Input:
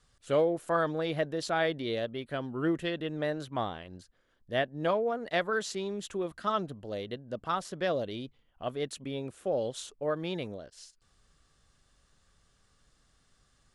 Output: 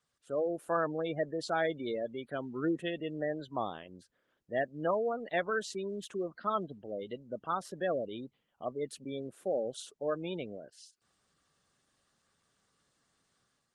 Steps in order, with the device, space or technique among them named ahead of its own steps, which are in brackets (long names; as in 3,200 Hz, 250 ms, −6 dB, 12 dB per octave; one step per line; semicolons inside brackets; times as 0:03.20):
noise-suppressed video call (high-pass filter 160 Hz 12 dB per octave; gate on every frequency bin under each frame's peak −20 dB strong; automatic gain control gain up to 7 dB; level −9 dB; Opus 24 kbit/s 48,000 Hz)